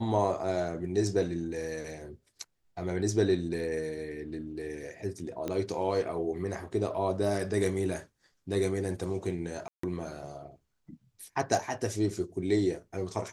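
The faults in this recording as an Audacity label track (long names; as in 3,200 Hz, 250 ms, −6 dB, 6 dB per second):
5.480000	5.480000	click −20 dBFS
9.680000	9.830000	drop-out 154 ms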